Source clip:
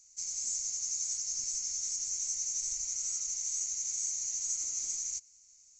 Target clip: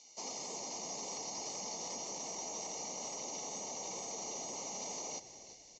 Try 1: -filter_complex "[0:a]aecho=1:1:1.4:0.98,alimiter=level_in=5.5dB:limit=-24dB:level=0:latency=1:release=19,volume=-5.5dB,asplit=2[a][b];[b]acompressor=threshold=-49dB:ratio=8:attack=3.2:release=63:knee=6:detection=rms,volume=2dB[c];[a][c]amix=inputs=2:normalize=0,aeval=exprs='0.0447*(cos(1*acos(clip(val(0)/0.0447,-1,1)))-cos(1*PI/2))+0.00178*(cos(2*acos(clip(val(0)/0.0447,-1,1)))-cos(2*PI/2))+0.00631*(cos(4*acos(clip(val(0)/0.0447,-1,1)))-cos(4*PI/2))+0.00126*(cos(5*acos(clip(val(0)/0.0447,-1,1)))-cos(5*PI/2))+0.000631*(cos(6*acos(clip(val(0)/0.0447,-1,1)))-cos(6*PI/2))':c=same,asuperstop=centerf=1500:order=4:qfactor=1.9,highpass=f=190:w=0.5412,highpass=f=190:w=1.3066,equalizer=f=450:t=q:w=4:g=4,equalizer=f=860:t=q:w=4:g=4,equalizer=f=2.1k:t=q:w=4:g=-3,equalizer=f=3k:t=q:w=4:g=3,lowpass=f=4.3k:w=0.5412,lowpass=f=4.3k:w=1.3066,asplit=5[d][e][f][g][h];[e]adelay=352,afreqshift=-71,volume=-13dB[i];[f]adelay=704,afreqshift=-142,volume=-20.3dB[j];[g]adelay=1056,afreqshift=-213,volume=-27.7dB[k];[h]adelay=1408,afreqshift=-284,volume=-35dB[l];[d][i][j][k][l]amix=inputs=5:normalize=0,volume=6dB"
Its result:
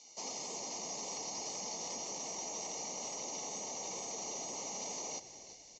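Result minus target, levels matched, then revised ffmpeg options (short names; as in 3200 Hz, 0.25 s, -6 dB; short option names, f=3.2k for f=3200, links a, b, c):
compressor: peak gain reduction -7 dB
-filter_complex "[0:a]aecho=1:1:1.4:0.98,alimiter=level_in=5.5dB:limit=-24dB:level=0:latency=1:release=19,volume=-5.5dB,asplit=2[a][b];[b]acompressor=threshold=-57dB:ratio=8:attack=3.2:release=63:knee=6:detection=rms,volume=2dB[c];[a][c]amix=inputs=2:normalize=0,aeval=exprs='0.0447*(cos(1*acos(clip(val(0)/0.0447,-1,1)))-cos(1*PI/2))+0.00178*(cos(2*acos(clip(val(0)/0.0447,-1,1)))-cos(2*PI/2))+0.00631*(cos(4*acos(clip(val(0)/0.0447,-1,1)))-cos(4*PI/2))+0.00126*(cos(5*acos(clip(val(0)/0.0447,-1,1)))-cos(5*PI/2))+0.000631*(cos(6*acos(clip(val(0)/0.0447,-1,1)))-cos(6*PI/2))':c=same,asuperstop=centerf=1500:order=4:qfactor=1.9,highpass=f=190:w=0.5412,highpass=f=190:w=1.3066,equalizer=f=450:t=q:w=4:g=4,equalizer=f=860:t=q:w=4:g=4,equalizer=f=2.1k:t=q:w=4:g=-3,equalizer=f=3k:t=q:w=4:g=3,lowpass=f=4.3k:w=0.5412,lowpass=f=4.3k:w=1.3066,asplit=5[d][e][f][g][h];[e]adelay=352,afreqshift=-71,volume=-13dB[i];[f]adelay=704,afreqshift=-142,volume=-20.3dB[j];[g]adelay=1056,afreqshift=-213,volume=-27.7dB[k];[h]adelay=1408,afreqshift=-284,volume=-35dB[l];[d][i][j][k][l]amix=inputs=5:normalize=0,volume=6dB"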